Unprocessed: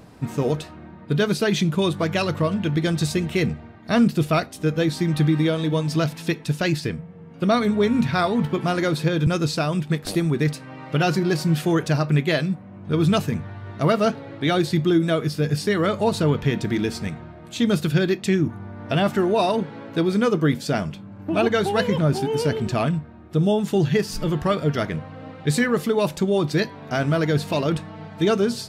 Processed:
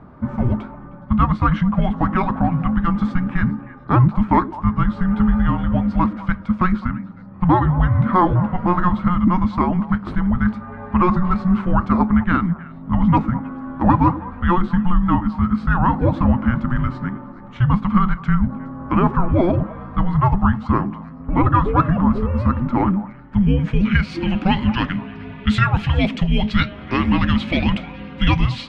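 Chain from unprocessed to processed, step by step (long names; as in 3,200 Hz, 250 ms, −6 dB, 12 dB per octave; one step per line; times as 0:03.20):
frequency shifter −360 Hz
echo through a band-pass that steps 104 ms, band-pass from 290 Hz, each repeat 1.4 octaves, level −11 dB
low-pass filter sweep 1,200 Hz → 2,700 Hz, 0:22.85–0:24.31
level +3.5 dB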